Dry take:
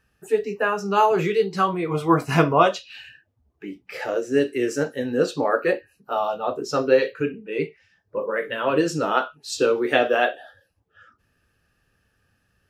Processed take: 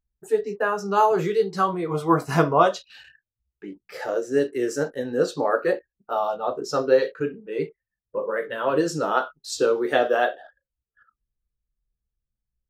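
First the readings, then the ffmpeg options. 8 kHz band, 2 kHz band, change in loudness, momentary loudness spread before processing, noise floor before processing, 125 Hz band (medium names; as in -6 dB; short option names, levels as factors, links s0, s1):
-0.5 dB, -3.0 dB, -1.0 dB, 13 LU, -69 dBFS, -2.5 dB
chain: -af "anlmdn=0.0398,equalizer=f=100:t=o:w=0.67:g=-7,equalizer=f=250:t=o:w=0.67:g=-4,equalizer=f=2500:t=o:w=0.67:g=-10"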